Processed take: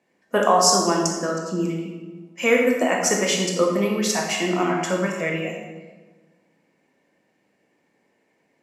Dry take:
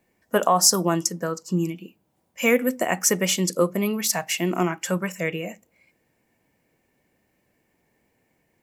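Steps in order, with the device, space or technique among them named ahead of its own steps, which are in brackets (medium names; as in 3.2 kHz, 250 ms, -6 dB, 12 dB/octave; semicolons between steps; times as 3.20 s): supermarket ceiling speaker (band-pass 210–6900 Hz; reverberation RT60 1.3 s, pre-delay 14 ms, DRR -0.5 dB)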